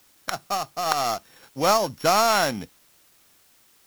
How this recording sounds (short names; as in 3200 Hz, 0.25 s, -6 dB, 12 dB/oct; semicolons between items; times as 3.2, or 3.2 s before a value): a buzz of ramps at a fixed pitch in blocks of 8 samples; random-step tremolo; a quantiser's noise floor 10-bit, dither triangular; IMA ADPCM